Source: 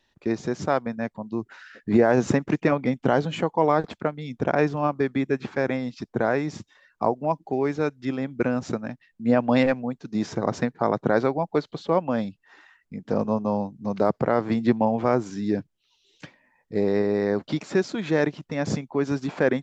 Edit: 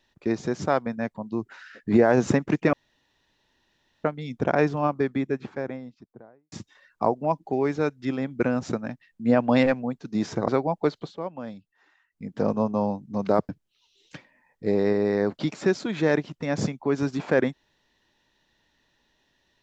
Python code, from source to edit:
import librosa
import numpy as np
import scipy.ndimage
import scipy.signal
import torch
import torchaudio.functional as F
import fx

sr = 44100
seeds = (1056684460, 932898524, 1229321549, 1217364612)

y = fx.studio_fade_out(x, sr, start_s=4.7, length_s=1.82)
y = fx.edit(y, sr, fx.room_tone_fill(start_s=2.73, length_s=1.31),
    fx.cut(start_s=10.48, length_s=0.71),
    fx.fade_down_up(start_s=11.72, length_s=1.25, db=-11.0, fade_s=0.14),
    fx.cut(start_s=14.2, length_s=1.38), tone=tone)